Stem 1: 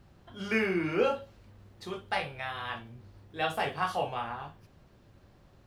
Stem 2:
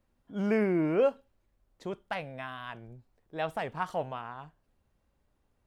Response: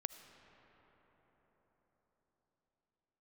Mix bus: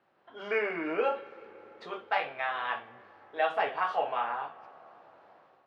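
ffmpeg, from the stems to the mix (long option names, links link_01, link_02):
-filter_complex "[0:a]volume=-5dB,asplit=2[link_01][link_02];[link_02]volume=-6.5dB[link_03];[1:a]aphaser=in_gain=1:out_gain=1:delay=3.2:decay=0.53:speed=1.1:type=triangular,volume=-10dB,asplit=2[link_04][link_05];[link_05]apad=whole_len=249710[link_06];[link_01][link_06]sidechaincompress=threshold=-41dB:ratio=8:attack=16:release=307[link_07];[2:a]atrim=start_sample=2205[link_08];[link_03][link_08]afir=irnorm=-1:irlink=0[link_09];[link_07][link_04][link_09]amix=inputs=3:normalize=0,dynaudnorm=framelen=140:gausssize=5:maxgain=8dB,highpass=530,lowpass=2300"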